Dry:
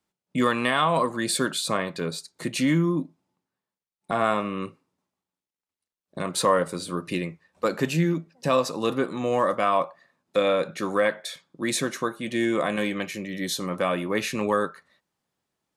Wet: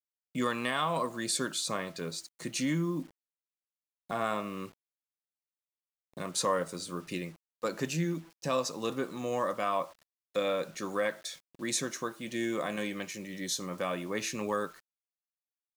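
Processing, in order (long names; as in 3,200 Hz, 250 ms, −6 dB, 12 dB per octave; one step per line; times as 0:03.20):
parametric band 6,200 Hz +9 dB 0.74 octaves
hum removal 329.2 Hz, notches 4
bit reduction 8 bits
level −8.5 dB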